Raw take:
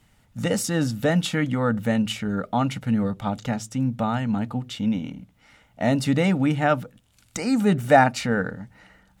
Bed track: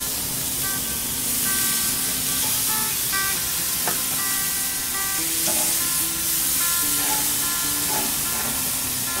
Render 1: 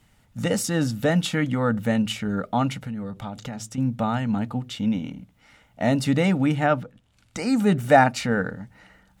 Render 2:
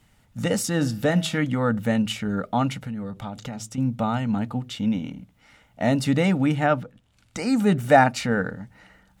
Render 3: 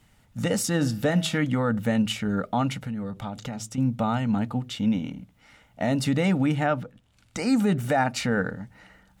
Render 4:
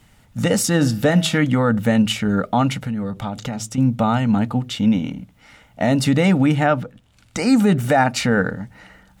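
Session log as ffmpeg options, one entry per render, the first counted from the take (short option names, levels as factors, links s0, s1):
-filter_complex "[0:a]asettb=1/sr,asplit=3[s0][s1][s2];[s0]atrim=end=2.734[s3];[s1]atrim=start=2.73:end=3.78,asetpts=PTS-STARTPTS,afade=t=in:d=0.004:c=qsin,afade=t=out:st=1.046:d=0.004:c=qsin,acompressor=threshold=0.0355:ratio=5:attack=3.2:release=140:knee=1:detection=peak[s4];[s2]atrim=start=3.776[s5];[s3][s4]acrossfade=d=0.004:c1=hsin:c2=qsin[s6];[s6][s5]acrossfade=d=0.004:c1=qsin:c2=hsin,asettb=1/sr,asplit=3[s7][s8][s9];[s7]atrim=end=6.664[s10];[s8]atrim=start=6.66:end=7.37,asetpts=PTS-STARTPTS,afade=t=in:d=0.004:c=qsin,afade=t=out:st=0.706:d=0.004:c=qsin,aemphasis=mode=reproduction:type=50kf[s11];[s9]atrim=start=7.366[s12];[s10][s11]acrossfade=d=0.004:c1=hsin:c2=qsin[s13];[s13][s12]acrossfade=d=0.004:c1=qsin:c2=hsin"
-filter_complex "[0:a]asplit=3[s0][s1][s2];[s0]afade=t=out:st=0.79:d=0.02[s3];[s1]bandreject=f=161.5:t=h:w=4,bandreject=f=323:t=h:w=4,bandreject=f=484.5:t=h:w=4,bandreject=f=646:t=h:w=4,bandreject=f=807.5:t=h:w=4,bandreject=f=969:t=h:w=4,bandreject=f=1130.5:t=h:w=4,bandreject=f=1292:t=h:w=4,bandreject=f=1453.5:t=h:w=4,bandreject=f=1615:t=h:w=4,bandreject=f=1776.5:t=h:w=4,bandreject=f=1938:t=h:w=4,bandreject=f=2099.5:t=h:w=4,bandreject=f=2261:t=h:w=4,bandreject=f=2422.5:t=h:w=4,bandreject=f=2584:t=h:w=4,bandreject=f=2745.5:t=h:w=4,bandreject=f=2907:t=h:w=4,bandreject=f=3068.5:t=h:w=4,bandreject=f=3230:t=h:w=4,bandreject=f=3391.5:t=h:w=4,bandreject=f=3553:t=h:w=4,bandreject=f=3714.5:t=h:w=4,bandreject=f=3876:t=h:w=4,bandreject=f=4037.5:t=h:w=4,bandreject=f=4199:t=h:w=4,bandreject=f=4360.5:t=h:w=4,bandreject=f=4522:t=h:w=4,bandreject=f=4683.5:t=h:w=4,bandreject=f=4845:t=h:w=4,bandreject=f=5006.5:t=h:w=4,bandreject=f=5168:t=h:w=4,bandreject=f=5329.5:t=h:w=4,bandreject=f=5491:t=h:w=4,bandreject=f=5652.5:t=h:w=4,bandreject=f=5814:t=h:w=4,bandreject=f=5975.5:t=h:w=4,bandreject=f=6137:t=h:w=4,bandreject=f=6298.5:t=h:w=4,afade=t=in:st=0.79:d=0.02,afade=t=out:st=1.37:d=0.02[s4];[s2]afade=t=in:st=1.37:d=0.02[s5];[s3][s4][s5]amix=inputs=3:normalize=0,asettb=1/sr,asplit=3[s6][s7][s8];[s6]atrim=end=3.504[s9];[s7]atrim=start=3.5:end=4.28,asetpts=PTS-STARTPTS,afade=t=in:d=0.004:c=qsin,afade=t=out:st=0.776:d=0.004:c=qsin,bandreject=f=1700:w=9[s10];[s8]atrim=start=4.276[s11];[s9][s10]acrossfade=d=0.004:c1=hsin:c2=qsin[s12];[s12][s11]acrossfade=d=0.004:c1=qsin:c2=hsin"
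-af "alimiter=limit=0.2:level=0:latency=1:release=94"
-af "volume=2.24"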